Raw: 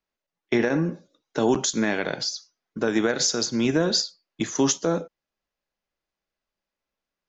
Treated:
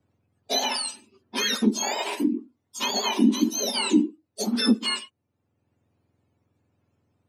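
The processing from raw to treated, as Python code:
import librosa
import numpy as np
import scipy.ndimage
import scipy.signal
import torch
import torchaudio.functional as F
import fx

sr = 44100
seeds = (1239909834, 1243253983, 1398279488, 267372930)

y = fx.octave_mirror(x, sr, pivot_hz=1200.0)
y = fx.band_squash(y, sr, depth_pct=40)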